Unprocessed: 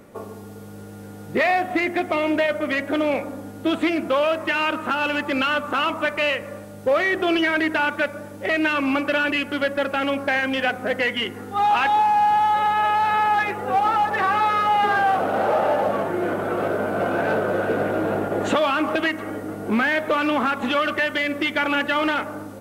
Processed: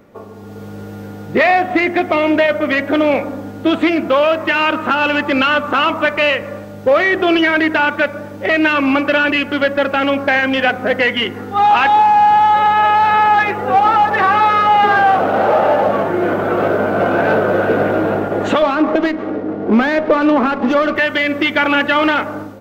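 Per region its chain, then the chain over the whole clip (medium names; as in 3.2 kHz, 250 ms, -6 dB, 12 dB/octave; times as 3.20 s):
18.62–20.96 s: band-pass 310–5300 Hz + tilt EQ -4.5 dB/octave + sliding maximum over 5 samples
whole clip: peaking EQ 9.9 kHz -13.5 dB 0.85 oct; level rider gain up to 9 dB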